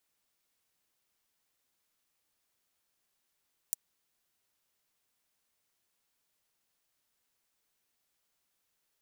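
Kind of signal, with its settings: closed hi-hat, high-pass 7.5 kHz, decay 0.02 s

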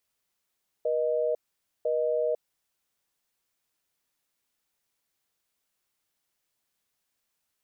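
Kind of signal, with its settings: call progress tone busy tone, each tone -26.5 dBFS 1.69 s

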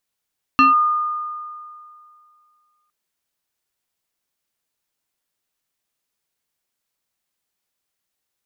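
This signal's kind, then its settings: FM tone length 2.31 s, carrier 1.22 kHz, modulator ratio 1.22, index 0.95, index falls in 0.15 s linear, decay 2.34 s, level -8 dB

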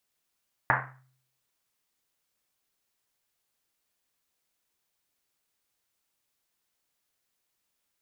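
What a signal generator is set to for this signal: Risset drum, pitch 130 Hz, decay 0.69 s, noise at 1.3 kHz, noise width 1.2 kHz, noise 75%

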